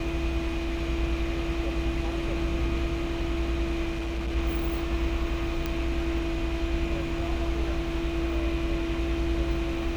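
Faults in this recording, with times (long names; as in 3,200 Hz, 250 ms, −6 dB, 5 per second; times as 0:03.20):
0:03.90–0:04.36: clipping −26.5 dBFS
0:05.66: click −15 dBFS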